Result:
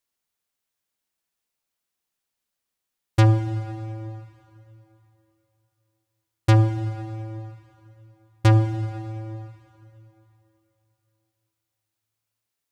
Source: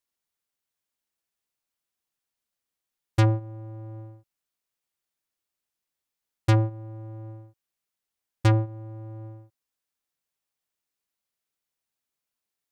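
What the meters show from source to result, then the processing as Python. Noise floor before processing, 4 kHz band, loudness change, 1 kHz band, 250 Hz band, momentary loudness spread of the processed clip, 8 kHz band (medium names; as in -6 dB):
under -85 dBFS, +3.5 dB, +2.0 dB, +4.5 dB, +4.0 dB, 19 LU, no reading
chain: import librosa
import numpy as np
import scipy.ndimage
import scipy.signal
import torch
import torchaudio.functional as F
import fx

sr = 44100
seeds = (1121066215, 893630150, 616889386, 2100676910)

y = fx.rev_plate(x, sr, seeds[0], rt60_s=3.3, hf_ratio=0.85, predelay_ms=0, drr_db=10.0)
y = y * 10.0 ** (3.0 / 20.0)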